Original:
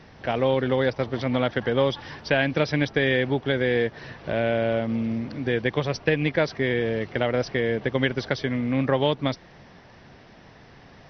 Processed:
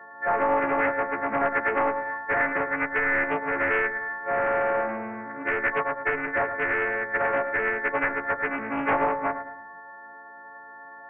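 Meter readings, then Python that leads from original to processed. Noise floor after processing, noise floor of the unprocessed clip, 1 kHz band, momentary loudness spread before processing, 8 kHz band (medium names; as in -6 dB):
-45 dBFS, -50 dBFS, +7.0 dB, 6 LU, no reading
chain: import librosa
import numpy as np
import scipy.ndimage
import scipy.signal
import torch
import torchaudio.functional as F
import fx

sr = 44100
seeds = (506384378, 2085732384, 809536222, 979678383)

p1 = fx.freq_snap(x, sr, grid_st=4)
p2 = scipy.signal.sosfilt(scipy.signal.butter(2, 620.0, 'highpass', fs=sr, output='sos'), p1)
p3 = fx.rider(p2, sr, range_db=4, speed_s=0.5)
p4 = p2 + (p3 * librosa.db_to_amplitude(-2.0))
p5 = 10.0 ** (-15.5 / 20.0) * np.tanh(p4 / 10.0 ** (-15.5 / 20.0))
p6 = fx.brickwall_lowpass(p5, sr, high_hz=2100.0)
p7 = fx.doubler(p6, sr, ms=19.0, db=-9.0)
p8 = p7 + fx.echo_feedback(p7, sr, ms=108, feedback_pct=42, wet_db=-9.5, dry=0)
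p9 = fx.room_shoebox(p8, sr, seeds[0], volume_m3=2400.0, walls='furnished', distance_m=0.43)
y = fx.doppler_dist(p9, sr, depth_ms=0.39)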